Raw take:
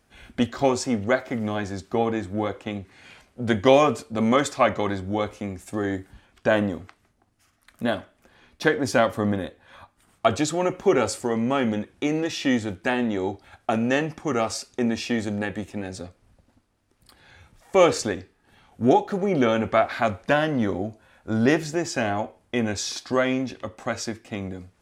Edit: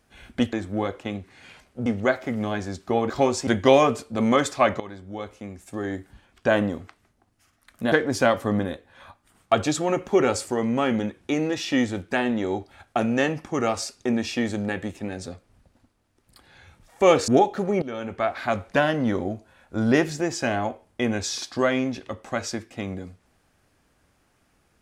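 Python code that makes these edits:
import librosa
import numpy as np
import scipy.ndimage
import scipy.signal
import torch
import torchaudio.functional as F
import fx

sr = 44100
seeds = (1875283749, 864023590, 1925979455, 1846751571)

y = fx.edit(x, sr, fx.swap(start_s=0.53, length_s=0.37, other_s=2.14, other_length_s=1.33),
    fx.fade_in_from(start_s=4.8, length_s=1.7, floor_db=-14.5),
    fx.cut(start_s=7.92, length_s=0.73),
    fx.cut(start_s=18.01, length_s=0.81),
    fx.fade_in_from(start_s=19.36, length_s=0.87, floor_db=-17.0), tone=tone)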